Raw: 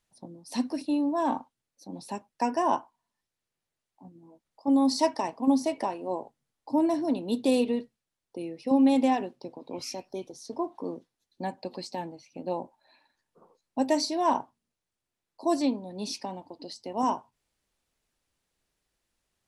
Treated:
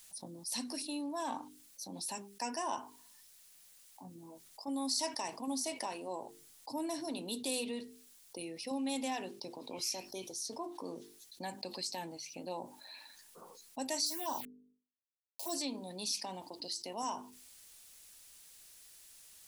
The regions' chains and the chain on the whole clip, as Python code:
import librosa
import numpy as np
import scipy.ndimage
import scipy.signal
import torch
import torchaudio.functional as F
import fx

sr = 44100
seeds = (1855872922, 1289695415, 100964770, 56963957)

y = fx.chain(x, sr, fx.high_shelf(hz=7900.0, db=5.0),
    fx.quant_dither(seeds[0], bits=8, dither='none'),
    fx.env_phaser(low_hz=220.0, high_hz=2300.0, full_db=-20.0), at=(14.06, 15.54))
y = librosa.effects.preemphasis(y, coef=0.9, zi=[0.0])
y = fx.hum_notches(y, sr, base_hz=50, count=9)
y = fx.env_flatten(y, sr, amount_pct=50)